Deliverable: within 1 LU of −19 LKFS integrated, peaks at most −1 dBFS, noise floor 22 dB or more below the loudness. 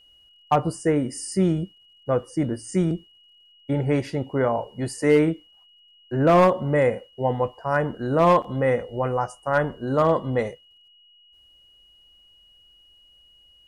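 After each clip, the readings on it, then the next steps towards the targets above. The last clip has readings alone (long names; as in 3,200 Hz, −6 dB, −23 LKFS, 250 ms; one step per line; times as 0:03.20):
share of clipped samples 0.3%; peaks flattened at −10.5 dBFS; interfering tone 2,900 Hz; level of the tone −53 dBFS; integrated loudness −23.0 LKFS; sample peak −10.5 dBFS; target loudness −19.0 LKFS
→ clipped peaks rebuilt −10.5 dBFS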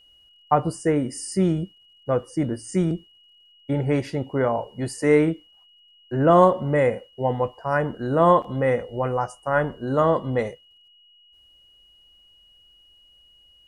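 share of clipped samples 0.0%; interfering tone 2,900 Hz; level of the tone −53 dBFS
→ notch filter 2,900 Hz, Q 30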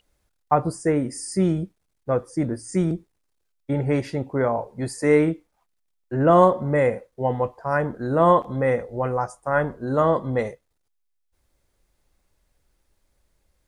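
interfering tone none found; integrated loudness −23.0 LKFS; sample peak −3.0 dBFS; target loudness −19.0 LKFS
→ level +4 dB
brickwall limiter −1 dBFS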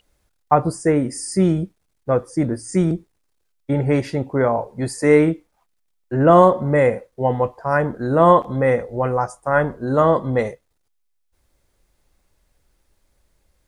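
integrated loudness −19.0 LKFS; sample peak −1.0 dBFS; background noise floor −69 dBFS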